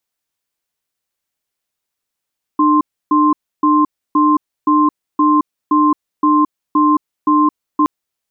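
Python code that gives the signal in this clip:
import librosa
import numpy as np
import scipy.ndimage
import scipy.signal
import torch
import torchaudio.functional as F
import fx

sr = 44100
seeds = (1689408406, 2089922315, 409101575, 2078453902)

y = fx.cadence(sr, length_s=5.27, low_hz=301.0, high_hz=1050.0, on_s=0.22, off_s=0.3, level_db=-11.5)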